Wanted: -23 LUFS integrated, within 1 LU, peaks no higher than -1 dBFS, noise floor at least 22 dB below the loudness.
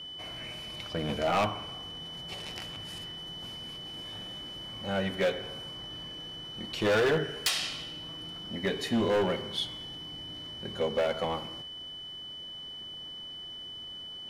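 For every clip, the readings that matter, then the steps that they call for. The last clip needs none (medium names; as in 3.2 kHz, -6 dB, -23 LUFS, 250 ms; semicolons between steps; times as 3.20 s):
clipped samples 1.4%; clipping level -22.0 dBFS; steady tone 3 kHz; tone level -40 dBFS; loudness -33.5 LUFS; peak level -22.0 dBFS; loudness target -23.0 LUFS
-> clip repair -22 dBFS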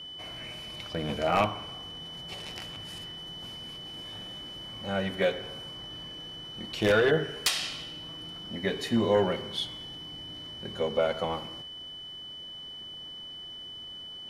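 clipped samples 0.0%; steady tone 3 kHz; tone level -40 dBFS
-> band-stop 3 kHz, Q 30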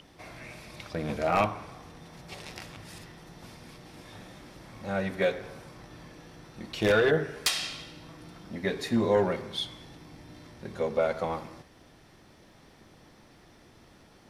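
steady tone not found; loudness -29.0 LUFS; peak level -12.5 dBFS; loudness target -23.0 LUFS
-> trim +6 dB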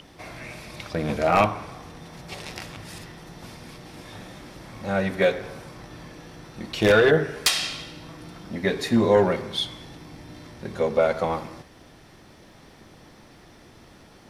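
loudness -23.0 LUFS; peak level -6.5 dBFS; noise floor -51 dBFS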